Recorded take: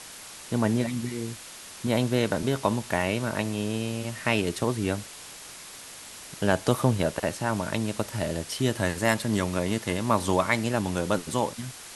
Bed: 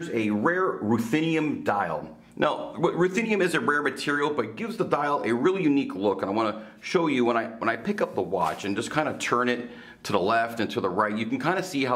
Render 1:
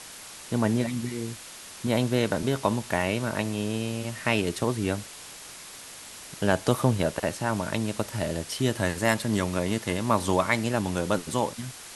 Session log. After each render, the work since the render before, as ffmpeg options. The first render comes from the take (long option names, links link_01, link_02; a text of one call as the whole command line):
ffmpeg -i in.wav -af anull out.wav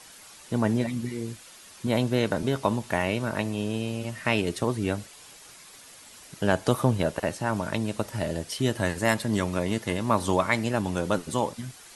ffmpeg -i in.wav -af "afftdn=noise_reduction=8:noise_floor=-44" out.wav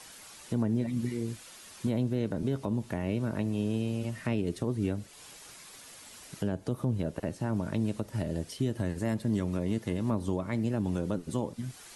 ffmpeg -i in.wav -filter_complex "[0:a]acrossover=split=440[link_01][link_02];[link_02]acompressor=threshold=-46dB:ratio=2.5[link_03];[link_01][link_03]amix=inputs=2:normalize=0,alimiter=limit=-19.5dB:level=0:latency=1:release=177" out.wav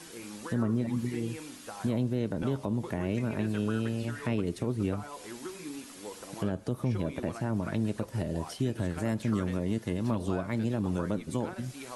ffmpeg -i in.wav -i bed.wav -filter_complex "[1:a]volume=-19dB[link_01];[0:a][link_01]amix=inputs=2:normalize=0" out.wav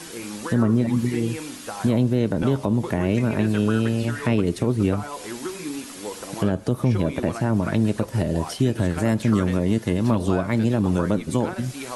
ffmpeg -i in.wav -af "volume=9.5dB" out.wav